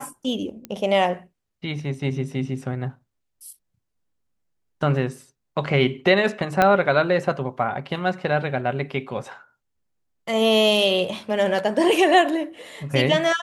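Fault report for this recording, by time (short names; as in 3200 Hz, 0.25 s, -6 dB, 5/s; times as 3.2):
0.65 pop -17 dBFS
6.62 pop -5 dBFS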